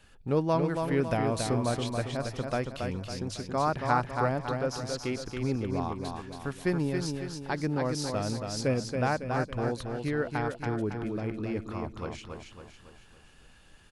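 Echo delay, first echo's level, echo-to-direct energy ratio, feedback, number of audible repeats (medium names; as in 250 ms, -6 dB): 277 ms, -5.0 dB, -4.0 dB, 47%, 5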